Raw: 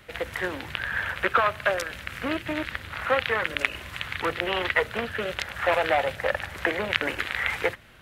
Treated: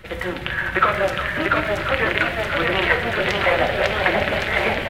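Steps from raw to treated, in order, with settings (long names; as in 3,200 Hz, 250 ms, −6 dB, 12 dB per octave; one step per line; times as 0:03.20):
bass and treble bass +6 dB, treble −4 dB
comb filter 5.3 ms, depth 37%
reversed playback
upward compression, threshold −32 dBFS
reversed playback
time stretch by overlap-add 0.61×, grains 150 ms
single-tap delay 363 ms −12 dB
on a send at −6 dB: convolution reverb RT60 0.75 s, pre-delay 3 ms
on the sum: delay with pitch and tempo change per echo 737 ms, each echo +1 semitone, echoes 3
level +4 dB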